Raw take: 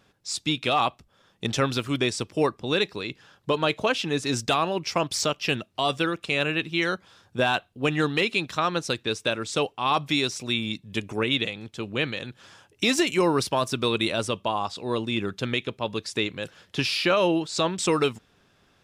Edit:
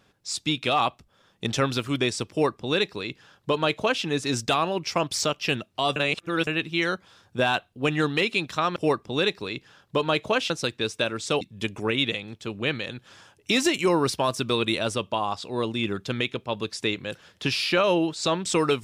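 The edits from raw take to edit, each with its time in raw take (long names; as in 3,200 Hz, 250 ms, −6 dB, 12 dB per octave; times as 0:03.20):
0:02.30–0:04.04: duplicate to 0:08.76
0:05.96–0:06.47: reverse
0:09.67–0:10.74: remove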